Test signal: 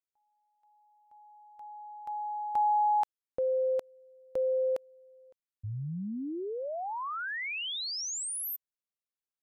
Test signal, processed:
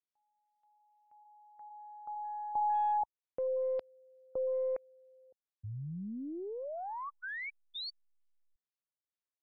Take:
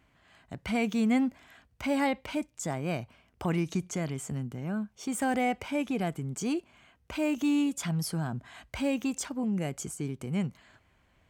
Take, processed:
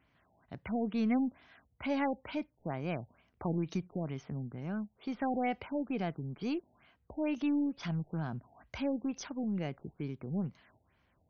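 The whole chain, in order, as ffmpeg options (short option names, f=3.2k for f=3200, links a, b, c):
-af "highpass=54,aeval=exprs='0.15*(cos(1*acos(clip(val(0)/0.15,-1,1)))-cos(1*PI/2))+0.00299*(cos(3*acos(clip(val(0)/0.15,-1,1)))-cos(3*PI/2))+0.00211*(cos(6*acos(clip(val(0)/0.15,-1,1)))-cos(6*PI/2))':c=same,afftfilt=real='re*lt(b*sr/1024,860*pow(6600/860,0.5+0.5*sin(2*PI*2.2*pts/sr)))':imag='im*lt(b*sr/1024,860*pow(6600/860,0.5+0.5*sin(2*PI*2.2*pts/sr)))':win_size=1024:overlap=0.75,volume=-4dB"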